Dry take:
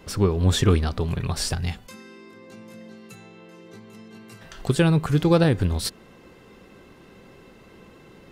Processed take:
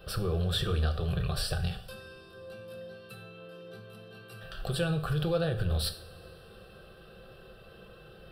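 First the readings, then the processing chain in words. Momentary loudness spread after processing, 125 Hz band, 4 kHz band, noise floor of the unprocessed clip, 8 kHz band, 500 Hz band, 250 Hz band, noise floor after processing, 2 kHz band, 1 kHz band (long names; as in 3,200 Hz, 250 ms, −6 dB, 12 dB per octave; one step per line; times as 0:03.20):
19 LU, −8.5 dB, −4.5 dB, −50 dBFS, −10.5 dB, −8.5 dB, −12.5 dB, −52 dBFS, −6.5 dB, −9.0 dB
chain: brickwall limiter −19 dBFS, peak gain reduction 11.5 dB
phaser with its sweep stopped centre 1,400 Hz, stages 8
coupled-rooms reverb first 0.43 s, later 3.6 s, from −22 dB, DRR 6 dB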